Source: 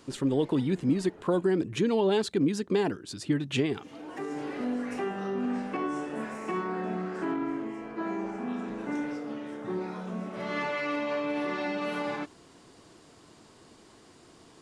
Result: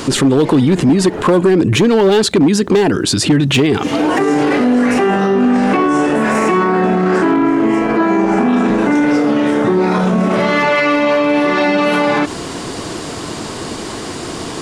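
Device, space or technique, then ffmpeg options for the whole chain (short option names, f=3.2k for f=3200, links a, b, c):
loud club master: -af "acompressor=threshold=-34dB:ratio=1.5,asoftclip=type=hard:threshold=-26dB,alimiter=level_in=35.5dB:limit=-1dB:release=50:level=0:latency=1,volume=-5dB"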